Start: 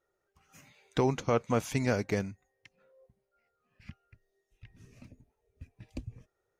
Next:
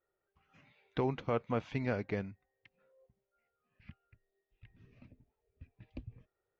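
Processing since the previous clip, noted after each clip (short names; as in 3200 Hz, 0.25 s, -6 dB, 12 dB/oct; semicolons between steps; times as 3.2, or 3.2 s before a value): LPF 3700 Hz 24 dB/oct; gain -5.5 dB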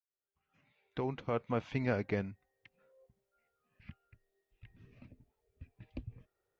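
opening faded in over 1.97 s; gain +2 dB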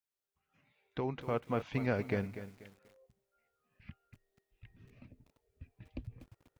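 lo-fi delay 0.243 s, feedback 35%, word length 9-bit, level -11.5 dB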